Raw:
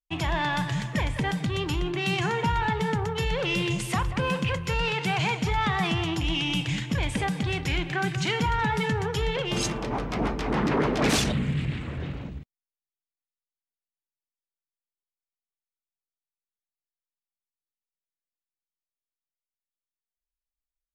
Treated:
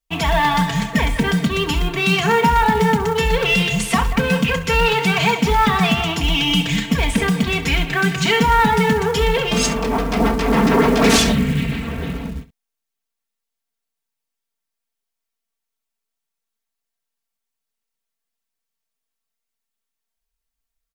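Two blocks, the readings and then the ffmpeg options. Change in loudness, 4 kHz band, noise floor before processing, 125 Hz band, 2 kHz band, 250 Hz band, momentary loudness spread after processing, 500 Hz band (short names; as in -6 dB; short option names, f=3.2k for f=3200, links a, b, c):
+9.5 dB, +9.5 dB, under -85 dBFS, +6.5 dB, +10.0 dB, +10.5 dB, 6 LU, +10.5 dB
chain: -filter_complex "[0:a]aecho=1:1:4.4:0.94,asplit=2[a][b];[b]aecho=0:1:28|68:0.2|0.178[c];[a][c]amix=inputs=2:normalize=0,acontrast=82,acrusher=bits=6:mode=log:mix=0:aa=0.000001"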